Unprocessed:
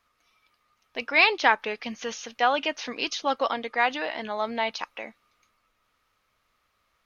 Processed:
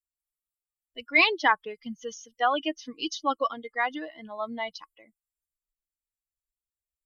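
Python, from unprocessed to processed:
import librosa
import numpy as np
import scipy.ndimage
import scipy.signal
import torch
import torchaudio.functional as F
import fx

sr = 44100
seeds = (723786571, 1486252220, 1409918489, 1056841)

y = fx.bin_expand(x, sr, power=2.0)
y = fx.small_body(y, sr, hz=(320.0, 1100.0, 2100.0, 3000.0), ring_ms=55, db=9)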